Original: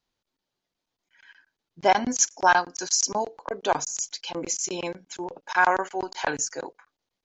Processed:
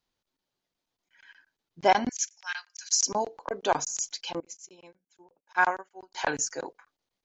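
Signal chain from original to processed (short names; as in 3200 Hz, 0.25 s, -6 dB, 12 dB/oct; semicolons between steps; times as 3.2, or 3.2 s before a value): 2.09–2.92 ladder high-pass 1700 Hz, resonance 35%; 4.4–6.14 upward expander 2.5:1, over -34 dBFS; gain -1.5 dB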